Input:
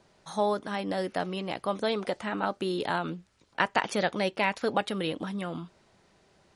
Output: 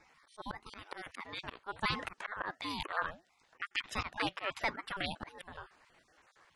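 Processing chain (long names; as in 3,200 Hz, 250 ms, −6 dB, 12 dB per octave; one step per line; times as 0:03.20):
time-frequency cells dropped at random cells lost 34%
high-pass filter 940 Hz 6 dB per octave
parametric band 1,400 Hz +12.5 dB 1.1 octaves
volume swells 217 ms
ring modulator whose carrier an LFO sweeps 430 Hz, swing 55%, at 1.5 Hz
level +1 dB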